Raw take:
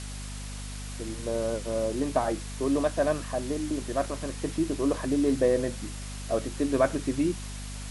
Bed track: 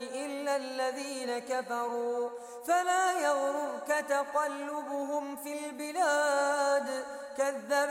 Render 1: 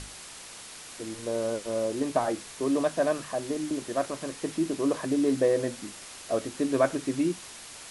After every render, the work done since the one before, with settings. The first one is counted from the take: hum notches 50/100/150/200/250 Hz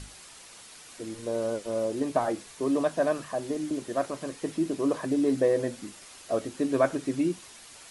noise reduction 6 dB, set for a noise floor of -45 dBFS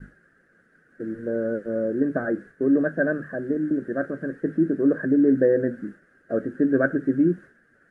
expander -41 dBFS; FFT filter 100 Hz 0 dB, 170 Hz +10 dB, 530 Hz +4 dB, 980 Hz -19 dB, 1.6 kHz +14 dB, 2.3 kHz -17 dB, 3.7 kHz -27 dB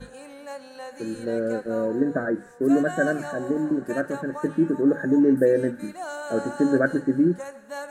add bed track -6.5 dB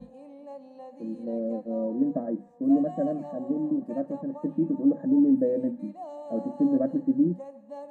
band-pass filter 250 Hz, Q 0.54; static phaser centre 400 Hz, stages 6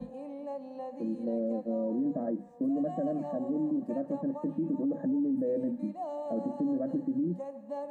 peak limiter -24 dBFS, peak gain reduction 11.5 dB; three bands compressed up and down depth 40%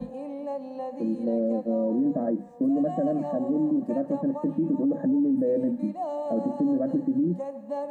trim +6 dB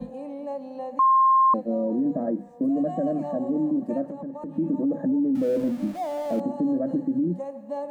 0.99–1.54 s: bleep 1.06 kHz -14.5 dBFS; 4.08–4.58 s: compression 5:1, threshold -32 dBFS; 5.35–6.40 s: jump at every zero crossing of -38 dBFS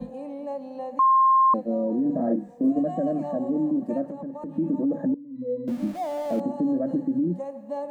2.06–2.79 s: doubling 34 ms -3 dB; 5.14–5.68 s: pitch-class resonator B, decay 0.32 s

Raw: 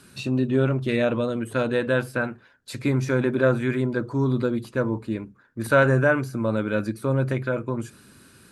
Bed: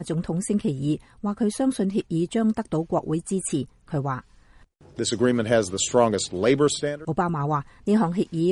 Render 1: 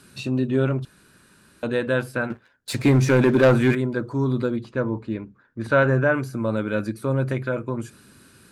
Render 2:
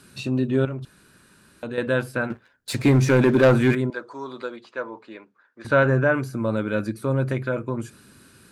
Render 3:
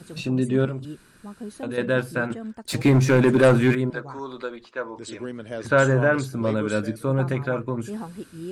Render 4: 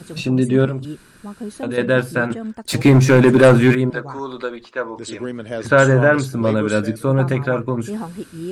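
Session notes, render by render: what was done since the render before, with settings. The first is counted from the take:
0.85–1.63 s: room tone; 2.30–3.75 s: waveshaping leveller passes 2; 4.56–6.14 s: distance through air 100 m
0.65–1.78 s: compression 2:1, threshold -32 dBFS; 3.90–5.65 s: band-pass 620–7300 Hz
add bed -13 dB
trim +6 dB; peak limiter -2 dBFS, peak gain reduction 1 dB

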